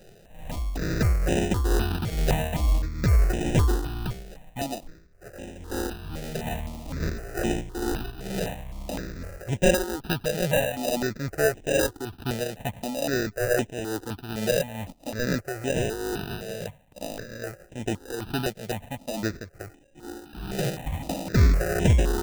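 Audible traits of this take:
aliases and images of a low sample rate 1,100 Hz, jitter 0%
tremolo triangle 2.3 Hz, depth 60%
notches that jump at a steady rate 3.9 Hz 280–4,500 Hz

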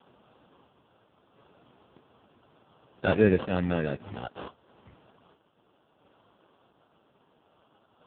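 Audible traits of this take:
a quantiser's noise floor 10 bits, dither triangular
sample-and-hold tremolo 1.5 Hz
aliases and images of a low sample rate 2,100 Hz, jitter 0%
AMR narrowband

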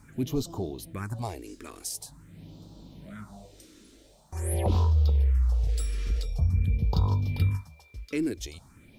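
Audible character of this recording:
phaser sweep stages 4, 0.46 Hz, lowest notch 130–2,000 Hz
a quantiser's noise floor 12 bits, dither none

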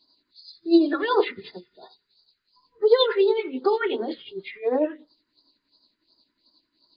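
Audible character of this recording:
tremolo triangle 11 Hz, depth 65%
a quantiser's noise floor 12 bits, dither none
phaser sweep stages 4, 2.8 Hz, lowest notch 700–2,600 Hz
MP2

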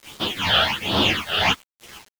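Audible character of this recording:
tremolo triangle 2.2 Hz, depth 95%
phaser sweep stages 8, 1.3 Hz, lowest notch 280–2,200 Hz
a quantiser's noise floor 8 bits, dither none
a shimmering, thickened sound

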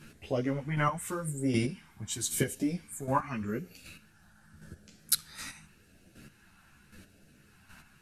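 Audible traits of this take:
phaser sweep stages 2, 0.87 Hz, lowest notch 470–1,000 Hz
chopped level 1.3 Hz, depth 60%, duty 15%
a shimmering, thickened sound

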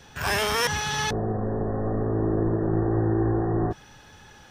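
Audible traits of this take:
background noise floor −50 dBFS
spectral slope −5.0 dB per octave

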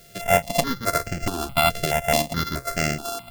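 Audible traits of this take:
a buzz of ramps at a fixed pitch in blocks of 64 samples
tremolo saw up 2.7 Hz, depth 40%
a quantiser's noise floor 10 bits, dither triangular
notches that jump at a steady rate 4.7 Hz 260–3,700 Hz

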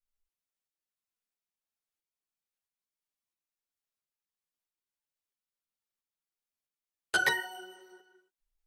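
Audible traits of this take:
tremolo saw up 1.5 Hz, depth 40%
a shimmering, thickened sound

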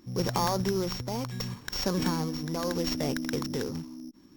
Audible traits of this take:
a buzz of ramps at a fixed pitch in blocks of 8 samples
tremolo triangle 0.71 Hz, depth 60%
aliases and images of a low sample rate 11,000 Hz, jitter 0%

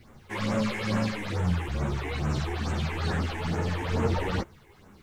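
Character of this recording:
phaser sweep stages 8, 2.3 Hz, lowest notch 160–4,700 Hz
a quantiser's noise floor 12 bits, dither triangular
a shimmering, thickened sound

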